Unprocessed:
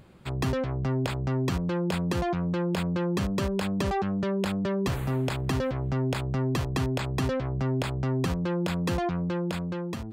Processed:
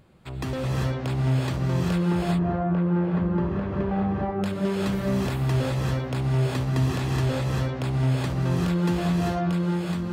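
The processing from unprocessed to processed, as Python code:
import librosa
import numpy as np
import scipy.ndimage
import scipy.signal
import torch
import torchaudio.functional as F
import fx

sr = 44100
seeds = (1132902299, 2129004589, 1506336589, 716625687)

y = fx.lowpass(x, sr, hz=1400.0, slope=12, at=(2.06, 4.33))
y = fx.rev_gated(y, sr, seeds[0], gate_ms=420, shape='rising', drr_db=-4.5)
y = y * 10.0 ** (-4.0 / 20.0)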